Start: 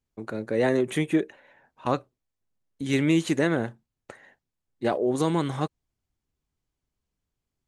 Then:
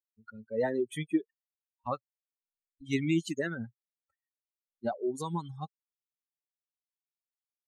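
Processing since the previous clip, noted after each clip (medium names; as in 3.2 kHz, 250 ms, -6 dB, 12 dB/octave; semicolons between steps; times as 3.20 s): expander on every frequency bin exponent 3; trim -2 dB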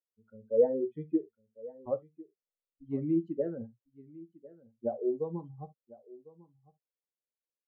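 resonant low-pass 520 Hz, resonance Q 4.1; delay 1051 ms -20 dB; reverberation, pre-delay 4 ms, DRR 7.5 dB; trim -6 dB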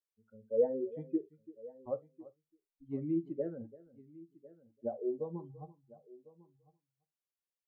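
echo from a far wall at 58 m, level -19 dB; trim -4.5 dB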